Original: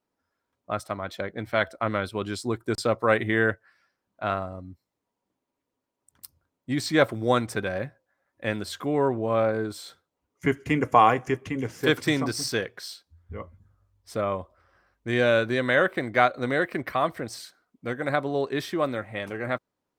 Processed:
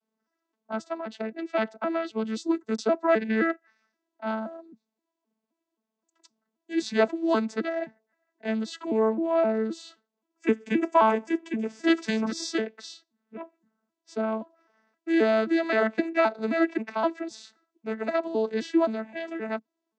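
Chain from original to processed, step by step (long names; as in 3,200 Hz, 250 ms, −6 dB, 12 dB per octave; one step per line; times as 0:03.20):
vocoder with an arpeggio as carrier bare fifth, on A3, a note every 262 ms
high-pass filter 150 Hz
high-shelf EQ 3,100 Hz +10.5 dB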